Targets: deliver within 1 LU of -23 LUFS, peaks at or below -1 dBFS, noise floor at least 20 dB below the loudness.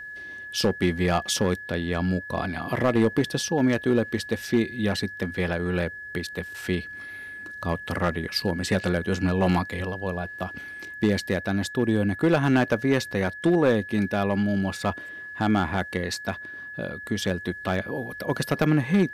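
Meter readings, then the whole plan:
clipped samples 0.5%; clipping level -13.0 dBFS; steady tone 1.7 kHz; tone level -36 dBFS; loudness -25.5 LUFS; peak level -13.0 dBFS; loudness target -23.0 LUFS
-> clip repair -13 dBFS; band-stop 1.7 kHz, Q 30; trim +2.5 dB

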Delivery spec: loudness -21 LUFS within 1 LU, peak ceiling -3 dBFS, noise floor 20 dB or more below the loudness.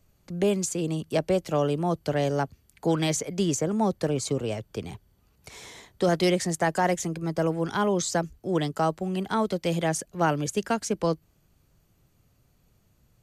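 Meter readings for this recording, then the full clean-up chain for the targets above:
loudness -27.0 LUFS; peak level -12.0 dBFS; loudness target -21.0 LUFS
-> trim +6 dB

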